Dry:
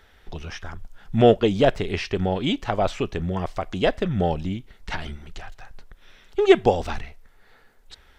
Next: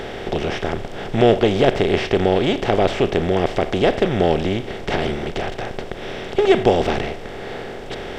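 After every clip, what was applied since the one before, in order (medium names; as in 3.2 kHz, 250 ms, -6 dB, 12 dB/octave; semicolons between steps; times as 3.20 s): spectral levelling over time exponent 0.4; trim -2 dB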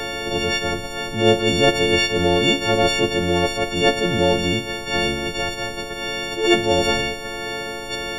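partials quantised in pitch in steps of 4 st; dynamic bell 1 kHz, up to -5 dB, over -30 dBFS, Q 0.93; attacks held to a fixed rise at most 110 dB/s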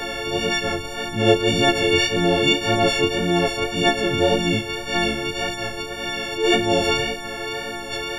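chorus 1.8 Hz, delay 17 ms, depth 3.8 ms; trim +2 dB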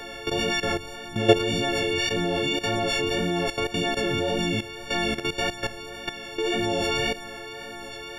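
level held to a coarse grid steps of 13 dB; trim +1 dB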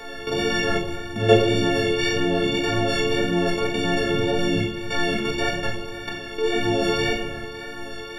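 simulated room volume 360 m³, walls mixed, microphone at 1.6 m; trim -2 dB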